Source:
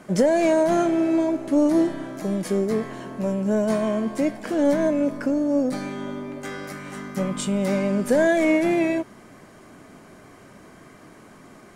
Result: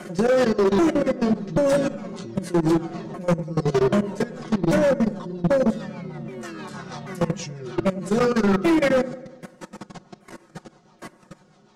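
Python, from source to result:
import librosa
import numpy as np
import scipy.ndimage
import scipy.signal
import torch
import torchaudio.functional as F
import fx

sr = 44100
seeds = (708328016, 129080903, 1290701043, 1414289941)

p1 = fx.pitch_ramps(x, sr, semitones=-10.0, every_ms=785)
p2 = fx.over_compress(p1, sr, threshold_db=-25.0, ratio=-0.5)
p3 = p1 + F.gain(torch.from_numpy(p2), 0.0).numpy()
p4 = fx.low_shelf(p3, sr, hz=130.0, db=-11.5)
p5 = fx.hum_notches(p4, sr, base_hz=60, count=9)
p6 = fx.level_steps(p5, sr, step_db=21)
p7 = fx.rotary(p6, sr, hz=6.3)
p8 = p7 + 0.72 * np.pad(p7, (int(5.5 * sr / 1000.0), 0))[:len(p7)]
p9 = p8 + fx.echo_wet_lowpass(p8, sr, ms=97, feedback_pct=60, hz=1400.0, wet_db=-18.5, dry=0)
p10 = np.clip(p9, -10.0 ** (-22.0 / 20.0), 10.0 ** (-22.0 / 20.0))
y = F.gain(torch.from_numpy(p10), 7.0).numpy()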